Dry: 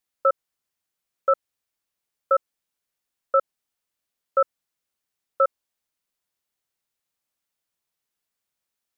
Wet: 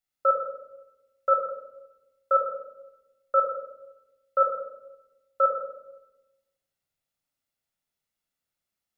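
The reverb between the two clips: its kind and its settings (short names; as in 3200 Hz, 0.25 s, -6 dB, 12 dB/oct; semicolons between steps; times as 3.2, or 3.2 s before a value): shoebox room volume 3900 m³, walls furnished, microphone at 6.9 m; gain -8 dB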